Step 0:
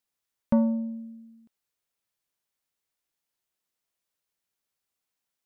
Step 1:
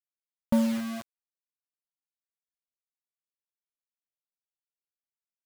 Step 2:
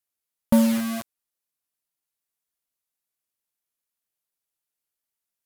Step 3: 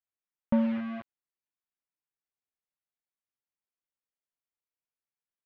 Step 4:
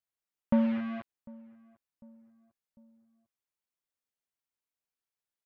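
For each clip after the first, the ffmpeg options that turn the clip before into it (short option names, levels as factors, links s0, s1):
-af "acrusher=bits=5:mix=0:aa=0.000001,volume=0.841"
-af "equalizer=f=12000:w=0.84:g=8,volume=2"
-af "lowpass=f=2600:w=0.5412,lowpass=f=2600:w=1.3066,volume=0.422"
-filter_complex "[0:a]asplit=2[s0][s1];[s1]adelay=749,lowpass=f=960:p=1,volume=0.0708,asplit=2[s2][s3];[s3]adelay=749,lowpass=f=960:p=1,volume=0.51,asplit=2[s4][s5];[s5]adelay=749,lowpass=f=960:p=1,volume=0.51[s6];[s0][s2][s4][s6]amix=inputs=4:normalize=0"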